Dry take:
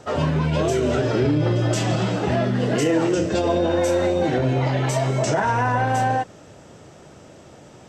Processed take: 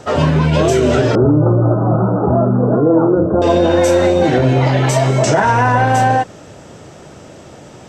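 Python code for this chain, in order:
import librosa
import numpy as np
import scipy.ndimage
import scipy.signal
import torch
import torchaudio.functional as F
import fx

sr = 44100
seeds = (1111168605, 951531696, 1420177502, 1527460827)

y = fx.steep_lowpass(x, sr, hz=1400.0, slope=96, at=(1.15, 3.42))
y = F.gain(torch.from_numpy(y), 8.0).numpy()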